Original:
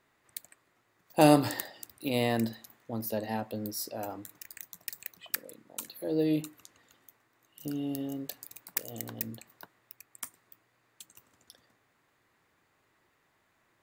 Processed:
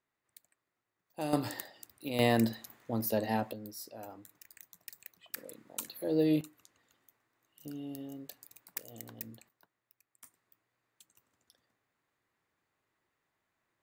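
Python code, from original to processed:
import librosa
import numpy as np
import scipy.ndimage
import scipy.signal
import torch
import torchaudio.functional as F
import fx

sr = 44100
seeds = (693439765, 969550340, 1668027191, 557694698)

y = fx.gain(x, sr, db=fx.steps((0.0, -16.0), (1.33, -6.0), (2.19, 2.0), (3.53, -9.0), (5.37, 0.0), (6.41, -8.0), (9.49, -17.5), (10.24, -11.0)))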